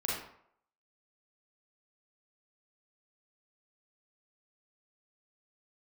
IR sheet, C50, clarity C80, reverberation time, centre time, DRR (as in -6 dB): 0.5 dB, 5.0 dB, 0.65 s, 58 ms, -5.5 dB